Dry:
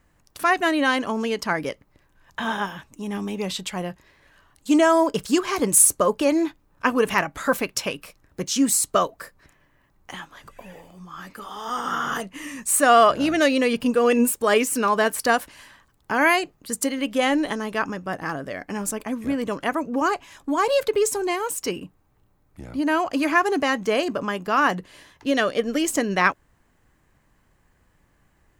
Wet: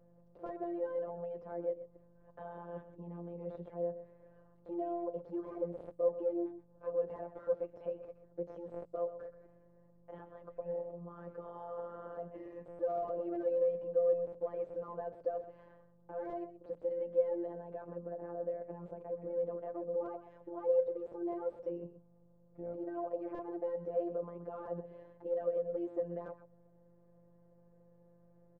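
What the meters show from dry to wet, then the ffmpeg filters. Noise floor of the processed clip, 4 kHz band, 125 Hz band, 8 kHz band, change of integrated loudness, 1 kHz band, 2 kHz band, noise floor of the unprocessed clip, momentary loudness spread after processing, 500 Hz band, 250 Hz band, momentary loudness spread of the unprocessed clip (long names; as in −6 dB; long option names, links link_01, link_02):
−64 dBFS, below −40 dB, −13.5 dB, below −40 dB, −17.0 dB, −23.5 dB, below −35 dB, −63 dBFS, 15 LU, −11.0 dB, −20.5 dB, 15 LU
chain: -filter_complex "[0:a]acrossover=split=120[link_01][link_02];[link_02]asoftclip=type=tanh:threshold=-15dB[link_03];[link_01][link_03]amix=inputs=2:normalize=0,acompressor=threshold=-31dB:ratio=6,alimiter=level_in=6.5dB:limit=-24dB:level=0:latency=1:release=70,volume=-6.5dB,aeval=exprs='val(0)+0.00251*(sin(2*PI*50*n/s)+sin(2*PI*2*50*n/s)/2+sin(2*PI*3*50*n/s)/3+sin(2*PI*4*50*n/s)/4+sin(2*PI*5*50*n/s)/5)':channel_layout=same,aecho=1:1:126:0.224,afftfilt=real='hypot(re,im)*cos(PI*b)':imag='0':win_size=1024:overlap=0.75,lowshelf=frequency=380:gain=-10,bandreject=frequency=50:width_type=h:width=6,bandreject=frequency=100:width_type=h:width=6,bandreject=frequency=150:width_type=h:width=6,bandreject=frequency=200:width_type=h:width=6,bandreject=frequency=250:width_type=h:width=6,bandreject=frequency=300:width_type=h:width=6,aeval=exprs='(mod(25.1*val(0)+1,2)-1)/25.1':channel_layout=same,lowpass=frequency=530:width_type=q:width=4.9,volume=1.5dB"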